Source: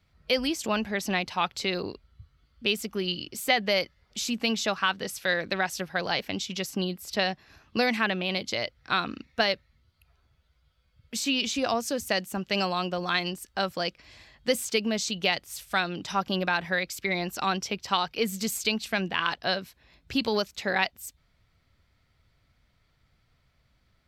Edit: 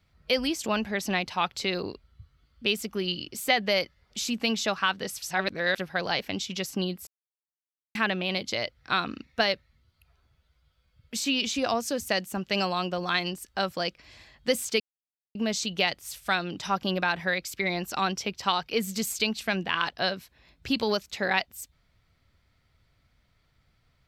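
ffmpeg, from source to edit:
-filter_complex "[0:a]asplit=6[a][b][c][d][e][f];[a]atrim=end=5.222[g];[b]atrim=start=5.218:end=5.782,asetpts=PTS-STARTPTS,areverse[h];[c]atrim=start=5.778:end=7.07,asetpts=PTS-STARTPTS,afade=t=out:st=1.288:d=0.004:c=hsin[i];[d]atrim=start=7.07:end=7.95,asetpts=PTS-STARTPTS,volume=0[j];[e]atrim=start=7.95:end=14.8,asetpts=PTS-STARTPTS,afade=t=in:d=0.004:c=hsin,afade=t=out:st=6.846:d=0.004:c=hsin,apad=pad_dur=0.55[k];[f]atrim=start=14.8,asetpts=PTS-STARTPTS,afade=t=in:d=0.004:c=hsin[l];[g][h]acrossfade=d=0.004:c1=hsin:c2=hsin[m];[i][j][k][l]concat=n=4:v=0:a=1[n];[m][n]acrossfade=d=0.004:c1=hsin:c2=hsin"

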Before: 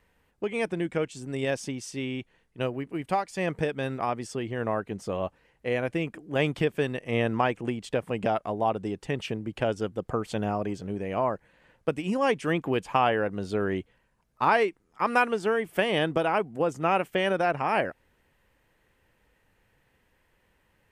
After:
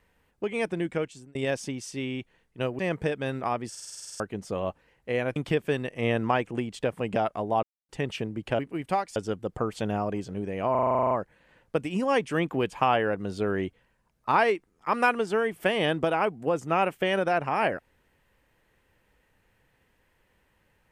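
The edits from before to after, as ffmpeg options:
-filter_complex "[0:a]asplit=28[a][b][c][d][e][f][g][h][i][j][k][l][m][n][o][p][q][r][s][t][u][v][w][x][y][z][aa][ab];[a]atrim=end=1.35,asetpts=PTS-STARTPTS,afade=t=out:st=0.83:d=0.52:c=qsin[ac];[b]atrim=start=1.35:end=2.792,asetpts=PTS-STARTPTS,afade=t=in:d=0.004:c=hsin[ad];[c]atrim=start=3.358:end=4.322[ae];[d]atrim=start=4.268:end=4.322[af];[e]atrim=start=4.268:end=4.322[ag];[f]atrim=start=4.268:end=4.322[ah];[g]atrim=start=4.268:end=4.322[ai];[h]atrim=start=4.268:end=4.322[aj];[i]atrim=start=4.268:end=4.322[ak];[j]atrim=start=4.268:end=4.322[al];[k]atrim=start=4.268:end=4.322[am];[l]atrim=start=4.268:end=4.322[an];[m]atrim=start=4.768:end=5.932[ao];[n]atrim=start=6.458:end=8.73,asetpts=PTS-STARTPTS,afade=t=out:st=2.268:d=0.004:c=hsin[ap];[o]atrim=start=8.73:end=8.99,asetpts=PTS-STARTPTS,volume=0[aq];[p]atrim=start=8.99:end=9.692,asetpts=PTS-STARTPTS,afade=t=in:d=0.004:c=hsin[ar];[q]atrim=start=2.788:end=3.362[as];[r]atrim=start=9.688:end=11.282[at];[s]atrim=start=11.238:end=11.282[au];[t]atrim=start=11.238:end=11.282[av];[u]atrim=start=11.238:end=11.282[aw];[v]atrim=start=11.238:end=11.282[ax];[w]atrim=start=11.238:end=11.282[ay];[x]atrim=start=11.238:end=11.282[az];[y]atrim=start=11.238:end=11.282[ba];[z]atrim=start=11.238:end=11.282[bb];[aa]atrim=start=11.238:end=11.282[bc];[ab]atrim=start=11.238[bd];[ac][ad]concat=n=2:v=0:a=1[be];[be][ae]acrossfade=d=0.004:c1=hsin:c2=hsin[bf];[bf][af]acrossfade=d=0.004:c1=hsin:c2=hsin[bg];[bg][ag]acrossfade=d=0.004:c1=hsin:c2=hsin[bh];[bh][ah]acrossfade=d=0.004:c1=hsin:c2=hsin[bi];[bi][ai]acrossfade=d=0.004:c1=hsin:c2=hsin[bj];[bj][aj]acrossfade=d=0.004:c1=hsin:c2=hsin[bk];[bk][ak]acrossfade=d=0.004:c1=hsin:c2=hsin[bl];[bl][al]acrossfade=d=0.004:c1=hsin:c2=hsin[bm];[bm][am]acrossfade=d=0.004:c1=hsin:c2=hsin[bn];[bn][an]acrossfade=d=0.004:c1=hsin:c2=hsin[bo];[bo][ao]acrossfade=d=0.004:c1=hsin:c2=hsin[bp];[ap][aq][ar]concat=n=3:v=0:a=1[bq];[bp][bq]acrossfade=d=0.004:c1=hsin:c2=hsin[br];[br][as]acrossfade=d=0.004:c1=hsin:c2=hsin[bs];[bs][at]acrossfade=d=0.004:c1=hsin:c2=hsin[bt];[bt][au]acrossfade=d=0.004:c1=hsin:c2=hsin[bu];[bu][av]acrossfade=d=0.004:c1=hsin:c2=hsin[bv];[bv][aw]acrossfade=d=0.004:c1=hsin:c2=hsin[bw];[bw][ax]acrossfade=d=0.004:c1=hsin:c2=hsin[bx];[bx][ay]acrossfade=d=0.004:c1=hsin:c2=hsin[by];[by][az]acrossfade=d=0.004:c1=hsin:c2=hsin[bz];[bz][ba]acrossfade=d=0.004:c1=hsin:c2=hsin[ca];[ca][bb]acrossfade=d=0.004:c1=hsin:c2=hsin[cb];[cb][bc]acrossfade=d=0.004:c1=hsin:c2=hsin[cc];[cc][bd]acrossfade=d=0.004:c1=hsin:c2=hsin"

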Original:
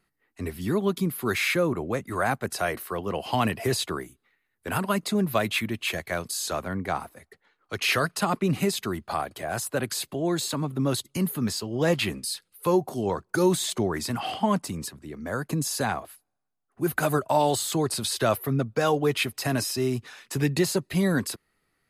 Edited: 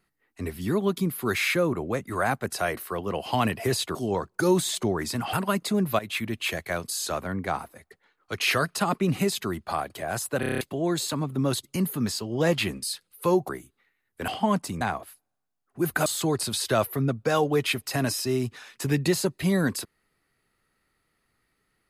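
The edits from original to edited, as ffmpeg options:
-filter_complex "[0:a]asplit=15[a][b][c][d][e][f][g][h][i][j][k][l][m][n][o];[a]atrim=end=3.952[p];[b]atrim=start=12.898:end=14.282[q];[c]atrim=start=4.738:end=5.4,asetpts=PTS-STARTPTS,afade=t=out:st=0.658:d=0.004:c=hsin:silence=0.158489[r];[d]atrim=start=5.4:end=9.842,asetpts=PTS-STARTPTS,afade=t=in:d=0.39:c=qsin:silence=0.158489[s];[e]atrim=start=9.808:end=9.842[t];[f]atrim=start=9.808:end=9.842[u];[g]atrim=start=9.808:end=9.842[v];[h]atrim=start=9.808:end=9.842[w];[i]atrim=start=9.808:end=9.842[x];[j]atrim=start=9.808:end=9.842[y];[k]atrim=start=10.018:end=12.902[z];[l]atrim=start=3.948:end=4.742[aa];[m]atrim=start=14.278:end=14.812[ab];[n]atrim=start=15.828:end=17.082[ac];[o]atrim=start=17.568[ad];[p][q]acrossfade=d=0.004:c1=hsin:c2=hsin[ae];[r][s]concat=n=2:v=0:a=1[af];[ae][af]acrossfade=d=0.004:c1=hsin:c2=hsin[ag];[ag][t]acrossfade=d=0.004:c1=hsin:c2=hsin[ah];[ah][u]acrossfade=d=0.004:c1=hsin:c2=hsin[ai];[ai][v]acrossfade=d=0.004:c1=hsin:c2=hsin[aj];[aj][w]acrossfade=d=0.004:c1=hsin:c2=hsin[ak];[ak][x]acrossfade=d=0.004:c1=hsin:c2=hsin[al];[al][y]acrossfade=d=0.004:c1=hsin:c2=hsin[am];[am][z]acrossfade=d=0.004:c1=hsin:c2=hsin[an];[an][aa]acrossfade=d=0.004:c1=hsin:c2=hsin[ao];[ao][ab]acrossfade=d=0.004:c1=hsin:c2=hsin[ap];[ap][ac]acrossfade=d=0.004:c1=hsin:c2=hsin[aq];[aq][ad]acrossfade=d=0.004:c1=hsin:c2=hsin"

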